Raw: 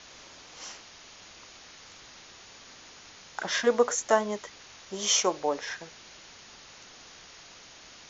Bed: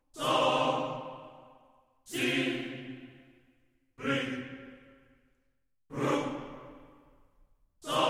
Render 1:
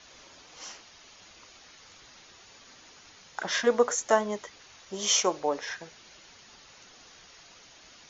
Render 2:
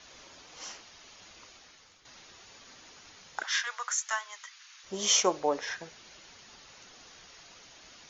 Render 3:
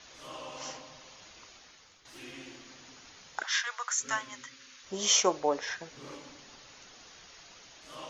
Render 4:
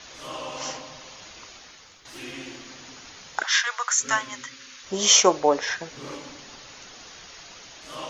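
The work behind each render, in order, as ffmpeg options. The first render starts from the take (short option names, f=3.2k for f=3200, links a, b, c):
-af "afftdn=nr=6:nf=-51"
-filter_complex "[0:a]asplit=3[a][b][c];[a]afade=t=out:st=3.42:d=0.02[d];[b]highpass=f=1.2k:w=0.5412,highpass=f=1.2k:w=1.3066,afade=t=in:st=3.42:d=0.02,afade=t=out:st=4.83:d=0.02[e];[c]afade=t=in:st=4.83:d=0.02[f];[d][e][f]amix=inputs=3:normalize=0,asplit=2[g][h];[g]atrim=end=2.05,asetpts=PTS-STARTPTS,afade=t=out:st=1.44:d=0.61:silence=0.298538[i];[h]atrim=start=2.05,asetpts=PTS-STARTPTS,afade=t=in:d=0.004:c=hsin:silence=0.298538[j];[i][j]concat=n=2:v=0:a=1"
-filter_complex "[1:a]volume=-17.5dB[a];[0:a][a]amix=inputs=2:normalize=0"
-af "volume=8.5dB"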